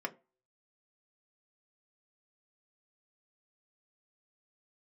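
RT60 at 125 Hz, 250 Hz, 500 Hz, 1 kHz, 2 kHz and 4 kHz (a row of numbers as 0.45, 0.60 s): 0.25, 0.30, 0.35, 0.30, 0.25, 0.20 s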